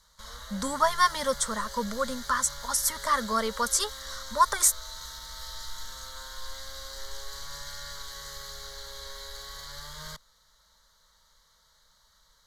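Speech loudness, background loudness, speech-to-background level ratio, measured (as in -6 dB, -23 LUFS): -26.5 LUFS, -40.0 LUFS, 13.5 dB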